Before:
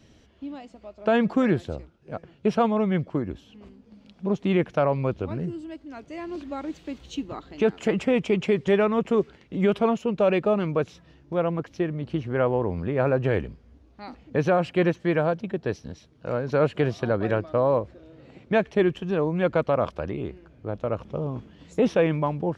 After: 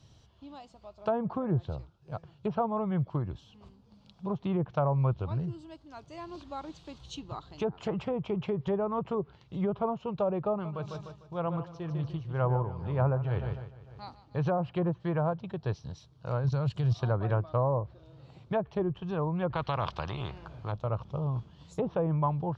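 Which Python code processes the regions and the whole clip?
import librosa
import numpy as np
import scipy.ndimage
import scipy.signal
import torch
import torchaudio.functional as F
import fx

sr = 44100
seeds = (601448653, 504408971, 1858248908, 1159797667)

y = fx.chain(x, sr, fx.echo_feedback(ms=150, feedback_pct=55, wet_db=-10.0),
    fx.tremolo(hz=2.0, depth=0.59), at=(10.5, 14.45))
y = fx.chain(y, sr, fx.bass_treble(bass_db=10, treble_db=14),
    fx.level_steps(step_db=13), at=(16.44, 16.95))
y = fx.chain(y, sr, fx.lowpass(hz=3200.0, slope=6),
    fx.spectral_comp(ratio=2.0), at=(19.5, 20.72))
y = fx.env_lowpass_down(y, sr, base_hz=760.0, full_db=-16.5)
y = fx.graphic_eq(y, sr, hz=(125, 250, 500, 1000, 2000, 4000), db=(10, -10, -4, 7, -10, 6))
y = y * 10.0 ** (-4.5 / 20.0)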